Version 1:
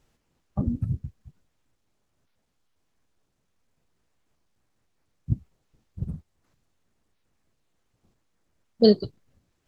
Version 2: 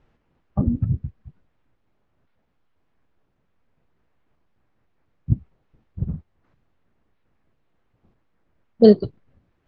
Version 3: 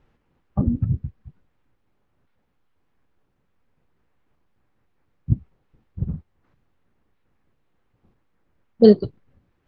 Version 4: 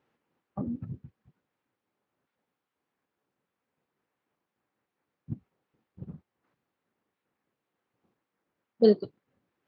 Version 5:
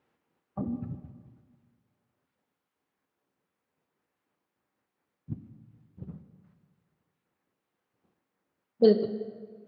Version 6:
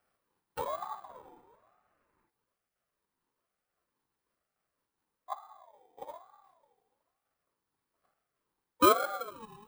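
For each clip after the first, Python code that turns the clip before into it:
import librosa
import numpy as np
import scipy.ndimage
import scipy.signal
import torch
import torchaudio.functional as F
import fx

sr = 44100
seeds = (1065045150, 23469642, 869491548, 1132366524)

y1 = scipy.signal.sosfilt(scipy.signal.butter(2, 2300.0, 'lowpass', fs=sr, output='sos'), x)
y1 = F.gain(torch.from_numpy(y1), 5.5).numpy()
y2 = fx.notch(y1, sr, hz=650.0, q=13.0)
y3 = scipy.signal.sosfilt(scipy.signal.bessel(2, 260.0, 'highpass', norm='mag', fs=sr, output='sos'), y2)
y3 = F.gain(torch.from_numpy(y3), -6.5).numpy()
y4 = fx.rev_plate(y3, sr, seeds[0], rt60_s=1.7, hf_ratio=0.65, predelay_ms=0, drr_db=8.5)
y5 = fx.bit_reversed(y4, sr, seeds[1], block=16)
y5 = fx.spec_box(y5, sr, start_s=1.1, length_s=1.19, low_hz=250.0, high_hz=2100.0, gain_db=10)
y5 = fx.ring_lfo(y5, sr, carrier_hz=800.0, swing_pct=25, hz=1.1)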